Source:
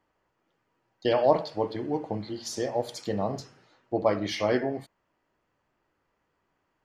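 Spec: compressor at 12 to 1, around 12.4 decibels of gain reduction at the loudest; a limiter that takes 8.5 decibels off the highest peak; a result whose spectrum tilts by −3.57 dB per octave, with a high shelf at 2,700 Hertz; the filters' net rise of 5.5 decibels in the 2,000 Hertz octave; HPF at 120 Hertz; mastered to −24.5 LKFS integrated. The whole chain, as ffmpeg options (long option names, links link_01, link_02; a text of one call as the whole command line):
ffmpeg -i in.wav -af "highpass=120,equalizer=frequency=2000:width_type=o:gain=4.5,highshelf=frequency=2700:gain=5,acompressor=threshold=-26dB:ratio=12,volume=11dB,alimiter=limit=-13dB:level=0:latency=1" out.wav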